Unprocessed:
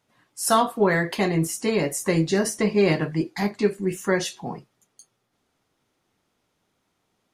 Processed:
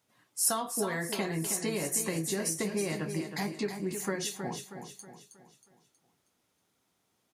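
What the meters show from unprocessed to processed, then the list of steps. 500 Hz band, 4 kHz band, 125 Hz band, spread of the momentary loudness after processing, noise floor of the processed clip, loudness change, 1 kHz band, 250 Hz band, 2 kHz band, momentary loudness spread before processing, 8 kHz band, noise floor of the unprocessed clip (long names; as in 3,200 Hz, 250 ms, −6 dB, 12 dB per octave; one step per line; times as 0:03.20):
−11.5 dB, −6.0 dB, −10.5 dB, 15 LU, −76 dBFS, −8.5 dB, −12.0 dB, −10.5 dB, −10.0 dB, 7 LU, −0.5 dB, −74 dBFS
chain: high-pass filter 57 Hz
downward compressor 6 to 1, threshold −24 dBFS, peak gain reduction 9.5 dB
high-shelf EQ 5,900 Hz +9.5 dB
repeating echo 318 ms, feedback 44%, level −8 dB
level −5.5 dB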